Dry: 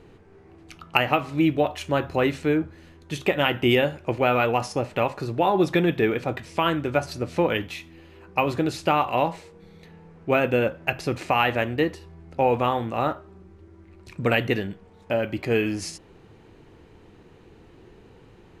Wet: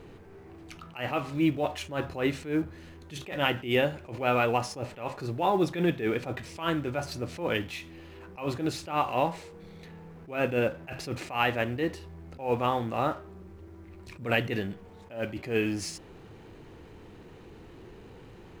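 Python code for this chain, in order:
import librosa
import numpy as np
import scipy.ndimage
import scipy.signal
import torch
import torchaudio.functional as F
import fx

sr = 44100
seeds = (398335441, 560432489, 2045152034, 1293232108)

y = fx.law_mismatch(x, sr, coded='mu')
y = fx.attack_slew(y, sr, db_per_s=150.0)
y = y * 10.0 ** (-4.0 / 20.0)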